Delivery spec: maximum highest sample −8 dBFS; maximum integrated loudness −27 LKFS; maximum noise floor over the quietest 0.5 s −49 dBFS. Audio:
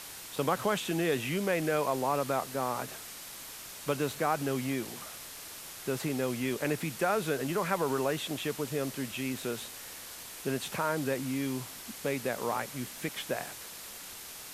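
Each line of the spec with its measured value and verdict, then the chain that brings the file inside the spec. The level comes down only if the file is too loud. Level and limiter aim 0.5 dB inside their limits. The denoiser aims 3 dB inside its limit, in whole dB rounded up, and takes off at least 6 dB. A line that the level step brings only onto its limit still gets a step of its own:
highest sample −13.5 dBFS: in spec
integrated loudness −33.5 LKFS: in spec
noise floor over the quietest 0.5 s −45 dBFS: out of spec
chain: broadband denoise 7 dB, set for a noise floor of −45 dBFS

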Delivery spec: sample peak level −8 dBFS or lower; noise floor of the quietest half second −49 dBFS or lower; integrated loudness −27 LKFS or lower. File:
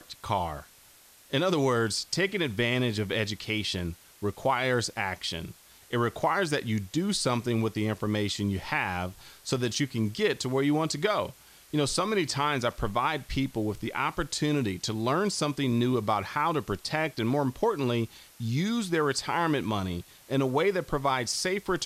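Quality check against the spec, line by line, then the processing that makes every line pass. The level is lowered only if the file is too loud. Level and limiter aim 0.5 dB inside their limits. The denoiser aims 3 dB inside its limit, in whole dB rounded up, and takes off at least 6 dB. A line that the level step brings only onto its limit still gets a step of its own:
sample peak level −13.0 dBFS: in spec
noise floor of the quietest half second −56 dBFS: in spec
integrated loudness −28.5 LKFS: in spec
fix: no processing needed

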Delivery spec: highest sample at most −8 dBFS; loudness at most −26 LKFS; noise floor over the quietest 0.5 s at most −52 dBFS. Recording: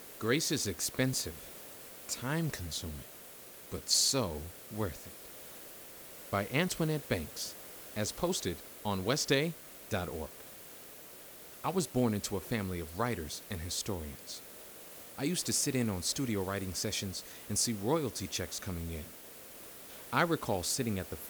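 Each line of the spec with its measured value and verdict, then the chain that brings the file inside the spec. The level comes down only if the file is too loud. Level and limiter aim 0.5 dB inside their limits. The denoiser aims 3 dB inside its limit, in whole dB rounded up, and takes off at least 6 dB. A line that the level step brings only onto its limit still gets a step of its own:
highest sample −14.0 dBFS: in spec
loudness −34.0 LKFS: in spec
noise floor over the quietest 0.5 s −51 dBFS: out of spec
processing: broadband denoise 6 dB, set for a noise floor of −51 dBFS

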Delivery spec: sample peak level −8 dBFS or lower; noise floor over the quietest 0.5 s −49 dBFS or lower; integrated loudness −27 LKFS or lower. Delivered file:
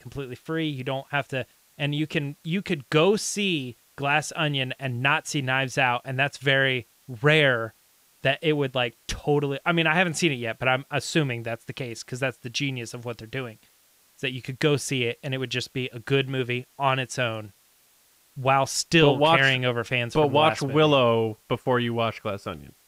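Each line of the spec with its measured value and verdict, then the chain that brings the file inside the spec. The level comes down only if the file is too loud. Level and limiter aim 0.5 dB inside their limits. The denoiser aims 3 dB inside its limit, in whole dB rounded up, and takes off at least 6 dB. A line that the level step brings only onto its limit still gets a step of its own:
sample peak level −6.5 dBFS: out of spec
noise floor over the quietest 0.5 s −61 dBFS: in spec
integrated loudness −24.5 LKFS: out of spec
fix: level −3 dB

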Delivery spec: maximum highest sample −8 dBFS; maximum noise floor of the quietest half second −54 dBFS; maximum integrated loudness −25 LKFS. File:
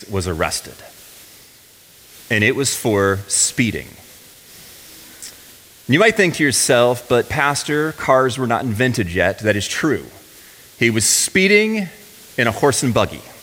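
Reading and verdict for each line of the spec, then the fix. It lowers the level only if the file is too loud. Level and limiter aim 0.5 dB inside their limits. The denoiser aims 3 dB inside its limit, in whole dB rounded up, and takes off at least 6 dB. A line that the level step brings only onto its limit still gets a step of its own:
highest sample −1.5 dBFS: out of spec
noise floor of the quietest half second −47 dBFS: out of spec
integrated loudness −16.5 LKFS: out of spec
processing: level −9 dB

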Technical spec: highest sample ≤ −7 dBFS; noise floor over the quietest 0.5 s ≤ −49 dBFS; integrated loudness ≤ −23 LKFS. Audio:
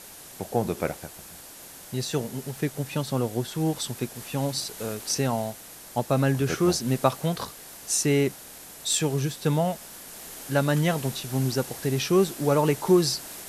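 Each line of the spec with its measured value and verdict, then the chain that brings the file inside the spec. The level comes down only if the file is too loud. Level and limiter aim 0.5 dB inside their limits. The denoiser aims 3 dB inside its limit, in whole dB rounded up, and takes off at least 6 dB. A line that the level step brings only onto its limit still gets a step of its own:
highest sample −5.5 dBFS: out of spec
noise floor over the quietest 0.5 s −45 dBFS: out of spec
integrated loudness −26.0 LKFS: in spec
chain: broadband denoise 7 dB, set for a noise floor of −45 dBFS
brickwall limiter −7.5 dBFS

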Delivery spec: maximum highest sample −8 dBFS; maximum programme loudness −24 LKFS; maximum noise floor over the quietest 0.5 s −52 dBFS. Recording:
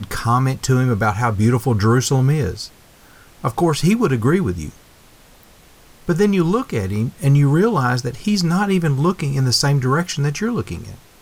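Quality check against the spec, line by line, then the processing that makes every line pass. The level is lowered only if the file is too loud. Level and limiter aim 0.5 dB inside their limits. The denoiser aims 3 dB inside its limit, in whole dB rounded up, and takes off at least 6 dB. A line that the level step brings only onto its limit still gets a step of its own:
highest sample −5.5 dBFS: out of spec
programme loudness −18.0 LKFS: out of spec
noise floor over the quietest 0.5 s −48 dBFS: out of spec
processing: level −6.5 dB

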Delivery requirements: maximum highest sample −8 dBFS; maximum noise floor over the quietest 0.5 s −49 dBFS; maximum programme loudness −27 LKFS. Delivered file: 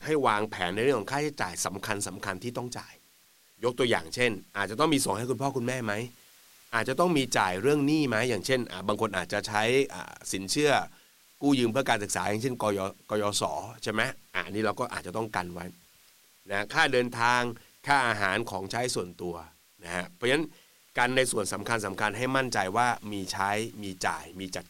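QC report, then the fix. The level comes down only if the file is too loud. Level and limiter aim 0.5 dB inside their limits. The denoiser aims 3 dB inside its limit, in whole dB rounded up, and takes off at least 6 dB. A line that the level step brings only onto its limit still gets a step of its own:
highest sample −9.5 dBFS: in spec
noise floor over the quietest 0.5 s −61 dBFS: in spec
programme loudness −28.5 LKFS: in spec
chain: no processing needed

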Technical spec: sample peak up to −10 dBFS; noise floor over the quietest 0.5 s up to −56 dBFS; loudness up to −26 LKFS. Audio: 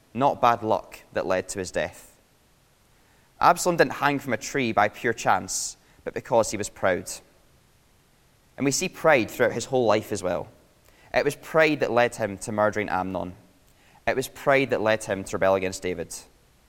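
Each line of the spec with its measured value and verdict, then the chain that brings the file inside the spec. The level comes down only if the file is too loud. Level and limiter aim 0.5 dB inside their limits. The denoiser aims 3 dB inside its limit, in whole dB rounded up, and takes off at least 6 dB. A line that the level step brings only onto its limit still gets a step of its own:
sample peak −3.0 dBFS: out of spec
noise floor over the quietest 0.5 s −61 dBFS: in spec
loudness −24.5 LKFS: out of spec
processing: level −2 dB
brickwall limiter −10.5 dBFS

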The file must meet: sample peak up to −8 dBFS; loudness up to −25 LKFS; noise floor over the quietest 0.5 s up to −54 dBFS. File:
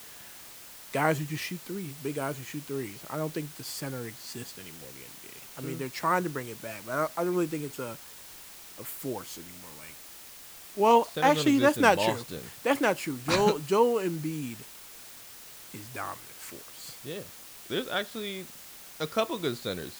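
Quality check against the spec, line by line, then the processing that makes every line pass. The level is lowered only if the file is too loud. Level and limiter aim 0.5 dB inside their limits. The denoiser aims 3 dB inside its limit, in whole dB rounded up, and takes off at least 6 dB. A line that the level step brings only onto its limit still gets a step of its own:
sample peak −6.0 dBFS: out of spec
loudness −29.5 LKFS: in spec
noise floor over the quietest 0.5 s −47 dBFS: out of spec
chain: broadband denoise 10 dB, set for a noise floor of −47 dBFS
brickwall limiter −8.5 dBFS

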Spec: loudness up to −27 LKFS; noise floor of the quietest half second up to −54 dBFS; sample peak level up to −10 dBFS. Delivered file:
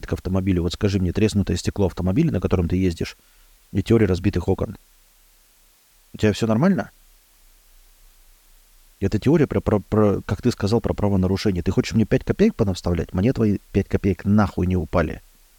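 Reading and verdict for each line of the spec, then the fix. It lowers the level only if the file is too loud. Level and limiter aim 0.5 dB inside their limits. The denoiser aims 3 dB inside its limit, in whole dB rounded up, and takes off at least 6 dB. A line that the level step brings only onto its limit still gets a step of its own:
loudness −21.5 LKFS: out of spec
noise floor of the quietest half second −56 dBFS: in spec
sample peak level −5.5 dBFS: out of spec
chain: level −6 dB

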